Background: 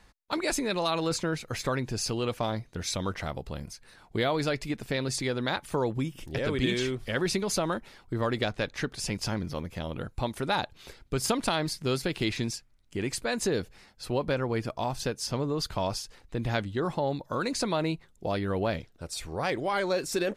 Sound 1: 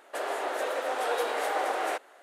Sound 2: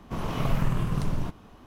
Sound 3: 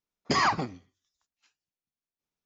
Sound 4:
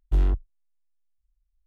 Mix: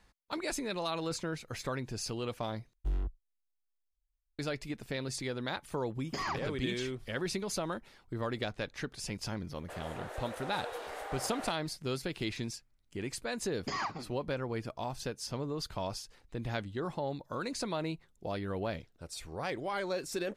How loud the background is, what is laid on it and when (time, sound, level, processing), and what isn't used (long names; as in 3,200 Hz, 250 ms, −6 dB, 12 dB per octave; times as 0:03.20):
background −7 dB
0:02.73: overwrite with 4 −12 dB
0:05.83: mix in 3 −12 dB
0:09.55: mix in 1 −12.5 dB
0:13.37: mix in 3 −11.5 dB
not used: 2